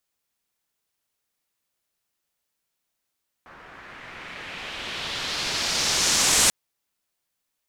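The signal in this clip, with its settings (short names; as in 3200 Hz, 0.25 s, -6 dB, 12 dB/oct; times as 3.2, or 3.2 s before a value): swept filtered noise white, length 3.04 s lowpass, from 1400 Hz, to 8100 Hz, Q 1.7, exponential, gain ramp +23 dB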